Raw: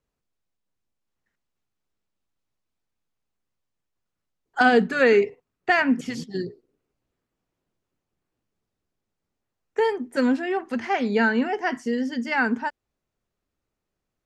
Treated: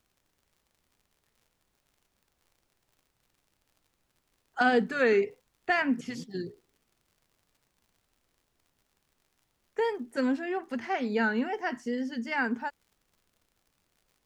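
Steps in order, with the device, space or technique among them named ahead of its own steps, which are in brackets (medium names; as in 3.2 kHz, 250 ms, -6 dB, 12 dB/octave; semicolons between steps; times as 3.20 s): vinyl LP (wow and flutter; crackle -47 dBFS; pink noise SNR 43 dB); trim -6.5 dB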